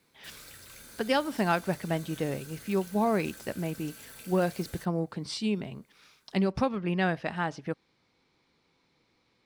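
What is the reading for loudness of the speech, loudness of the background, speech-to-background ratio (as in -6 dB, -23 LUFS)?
-31.0 LUFS, -47.0 LUFS, 16.0 dB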